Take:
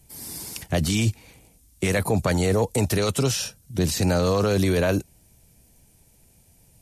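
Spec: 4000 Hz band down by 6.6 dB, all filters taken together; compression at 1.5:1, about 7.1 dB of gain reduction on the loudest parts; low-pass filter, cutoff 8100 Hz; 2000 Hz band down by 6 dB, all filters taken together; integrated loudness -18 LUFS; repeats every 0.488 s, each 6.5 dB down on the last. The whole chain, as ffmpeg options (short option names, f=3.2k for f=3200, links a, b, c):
-af "lowpass=8.1k,equalizer=f=2k:t=o:g=-6,equalizer=f=4k:t=o:g=-6.5,acompressor=threshold=-38dB:ratio=1.5,aecho=1:1:488|976|1464|1952|2440|2928:0.473|0.222|0.105|0.0491|0.0231|0.0109,volume=13dB"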